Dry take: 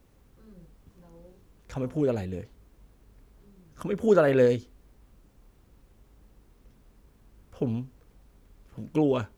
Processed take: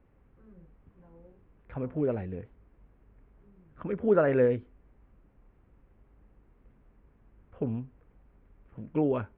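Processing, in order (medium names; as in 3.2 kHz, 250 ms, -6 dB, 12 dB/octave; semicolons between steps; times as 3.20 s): inverse Chebyshev low-pass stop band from 5.9 kHz, stop band 50 dB; trim -3 dB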